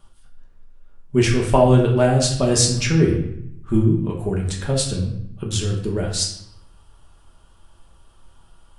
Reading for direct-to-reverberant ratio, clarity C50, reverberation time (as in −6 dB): −2.0 dB, 6.0 dB, 0.70 s